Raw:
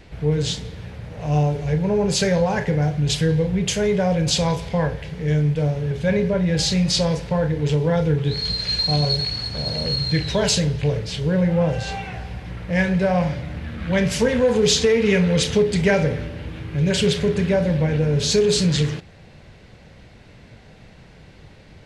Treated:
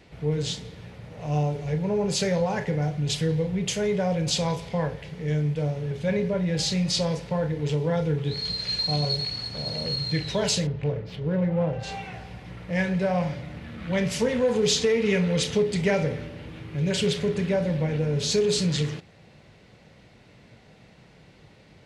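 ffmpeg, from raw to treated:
-filter_complex "[0:a]asplit=3[a][b][c];[a]afade=t=out:st=10.66:d=0.02[d];[b]adynamicsmooth=sensitivity=1:basefreq=1.8k,afade=t=in:st=10.66:d=0.02,afade=t=out:st=11.82:d=0.02[e];[c]afade=t=in:st=11.82:d=0.02[f];[d][e][f]amix=inputs=3:normalize=0,highpass=54,equalizer=f=72:w=1.7:g=-7.5,bandreject=f=1.6k:w=16,volume=-5dB"

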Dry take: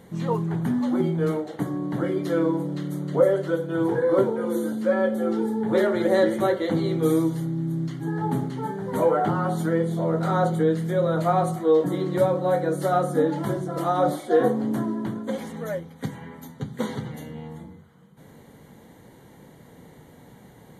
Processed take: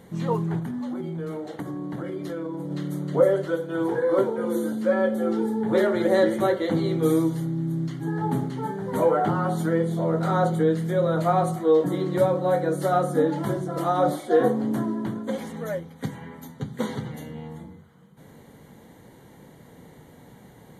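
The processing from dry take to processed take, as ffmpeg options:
-filter_complex "[0:a]asettb=1/sr,asplit=3[a][b][c];[a]atrim=end=0.594[d];[b]atrim=start=0.59:end=2.71,asetpts=PTS-STARTPTS,afade=t=in:d=0.004:c=qsin,afade=t=out:st=2.116:d=0.004:c=qsin,acompressor=threshold=-28dB:ratio=6:attack=3.2:release=140:knee=1:detection=peak[e];[c]atrim=start=2.706[f];[d][e]acrossfade=d=0.004:c1=hsin:c2=qsin[g];[g][f]acrossfade=d=0.004:c1=qsin:c2=hsin,asettb=1/sr,asplit=3[h][i][j];[h]atrim=end=3.454[k];[i]atrim=start=3.45:end=4.38,asetpts=PTS-STARTPTS,afade=t=in:d=0.004:c=qsin,afade=t=out:st=0.926:d=0.004:c=qsin,lowshelf=f=170:g=-10[l];[j]atrim=start=4.376[m];[k][l]acrossfade=d=0.004:c1=hsin:c2=qsin[n];[n][m]acrossfade=d=0.004:c1=qsin:c2=hsin"

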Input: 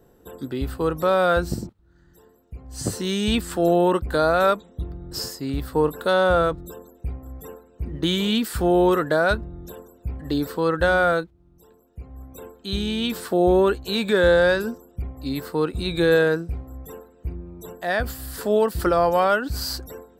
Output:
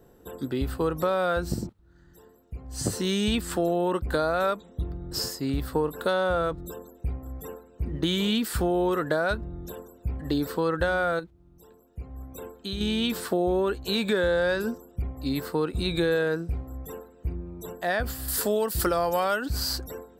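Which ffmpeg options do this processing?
-filter_complex "[0:a]asettb=1/sr,asplit=3[a][b][c];[a]atrim=end=11.194[d];[b]atrim=start=11.19:end=12.81,asetpts=PTS-STARTPTS,afade=t=in:d=0.004:c=qsin,afade=t=out:st=1.616:d=0.004:c=qsin,acompressor=threshold=-28dB:ratio=6:attack=3.2:release=140:knee=1:detection=peak[e];[c]atrim=start=12.806[f];[d][e]acrossfade=d=0.004:c1=hsin:c2=qsin[g];[g][f]acrossfade=d=0.004:c1=qsin:c2=hsin,asettb=1/sr,asplit=3[h][i][j];[h]atrim=end=18.284[k];[i]atrim=start=18.28:end=19.46,asetpts=PTS-STARTPTS,afade=t=in:d=0.004:c=qsin,afade=t=out:st=1.176:d=0.004:c=qsin,highshelf=f=4k:g=11.5[l];[j]atrim=start=19.456[m];[k][l]acrossfade=d=0.004:c1=hsin:c2=qsin[n];[n][m]acrossfade=d=0.004:c1=qsin:c2=hsin,acompressor=threshold=-22dB:ratio=4"

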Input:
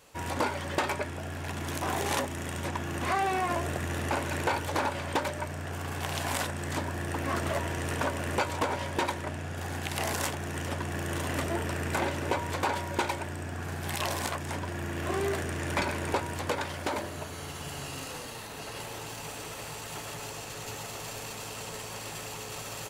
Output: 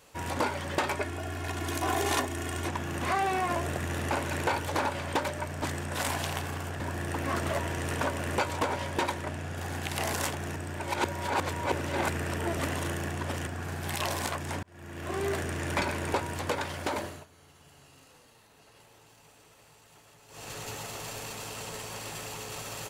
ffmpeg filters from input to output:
-filter_complex "[0:a]asettb=1/sr,asplit=3[a][b][c];[a]atrim=end=0.964[d];[b]atrim=start=0.96:end=2.69,asetpts=PTS-STARTPTS,afade=t=in:d=0.004:c=qsin,afade=t=out:st=1.726:d=0.004:c=qsin,aecho=1:1:2.8:0.65,atrim=end_sample=76293[e];[c]atrim=start=2.686[f];[d][e]acrossfade=d=0.004:c1=hsin:c2=qsin[g];[g][f]acrossfade=d=0.004:c1=qsin:c2=hsin,asplit=8[h][i][j][k][l][m][n][o];[h]atrim=end=5.622[p];[i]atrim=start=5.618:end=6.802,asetpts=PTS-STARTPTS,areverse[q];[j]atrim=start=6.798:end=10.562[r];[k]atrim=start=10.558:end=13.472,asetpts=PTS-STARTPTS,areverse[s];[l]atrim=start=13.468:end=14.63,asetpts=PTS-STARTPTS,afade=t=out:st=1.158:d=0.004:c=hsin[t];[m]atrim=start=14.63:end=17.26,asetpts=PTS-STARTPTS,afade=t=in:d=0.7,afade=t=out:st=2.41:d=0.22:silence=0.125893[u];[n]atrim=start=17.26:end=20.28,asetpts=PTS-STARTPTS,volume=-18dB[v];[o]atrim=start=20.28,asetpts=PTS-STARTPTS,afade=t=in:d=0.22:silence=0.125893[w];[p][q]acrossfade=d=0.004:c1=hsin:c2=hsin[x];[x][r]acrossfade=d=0.004:c1=hsin:c2=hsin[y];[y][s]acrossfade=d=0.004:c1=hsin:c2=hsin[z];[t][u][v][w]concat=n=4:v=0:a=1[aa];[z][aa]acrossfade=d=0.004:c1=hsin:c2=hsin"

